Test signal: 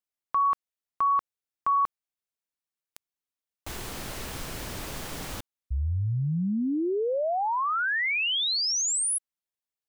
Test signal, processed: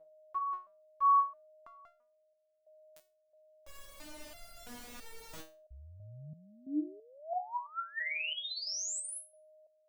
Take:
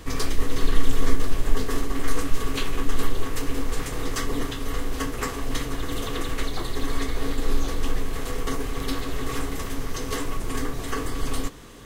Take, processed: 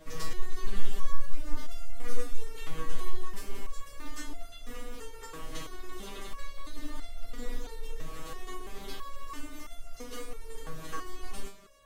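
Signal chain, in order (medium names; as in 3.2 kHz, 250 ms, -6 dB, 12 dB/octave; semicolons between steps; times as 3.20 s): whistle 620 Hz -45 dBFS; resonator arpeggio 3 Hz 160–690 Hz; trim +1.5 dB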